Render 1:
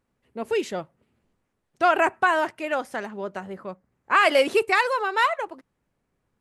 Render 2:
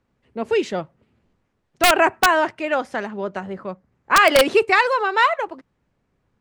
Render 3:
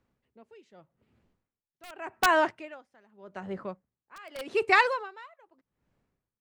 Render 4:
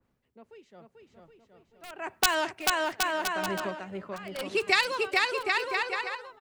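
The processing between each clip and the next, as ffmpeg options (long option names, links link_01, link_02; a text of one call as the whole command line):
ffmpeg -i in.wav -filter_complex "[0:a]lowpass=6200,equalizer=frequency=83:width=0.5:gain=3,acrossover=split=120|1600[link_01][link_02][link_03];[link_02]aeval=exprs='(mod(3.76*val(0)+1,2)-1)/3.76':channel_layout=same[link_04];[link_01][link_04][link_03]amix=inputs=3:normalize=0,volume=4.5dB" out.wav
ffmpeg -i in.wav -af "aeval=exprs='val(0)*pow(10,-30*(0.5-0.5*cos(2*PI*0.84*n/s))/20)':channel_layout=same,volume=-4.5dB" out.wav
ffmpeg -i in.wav -filter_complex "[0:a]aecho=1:1:440|770|1018|1203|1342:0.631|0.398|0.251|0.158|0.1,acrossover=split=140|3000[link_01][link_02][link_03];[link_02]acompressor=threshold=-28dB:ratio=6[link_04];[link_01][link_04][link_03]amix=inputs=3:normalize=0,adynamicequalizer=threshold=0.00562:dfrequency=2100:dqfactor=0.7:tfrequency=2100:tqfactor=0.7:attack=5:release=100:ratio=0.375:range=3.5:mode=boostabove:tftype=highshelf,volume=2dB" out.wav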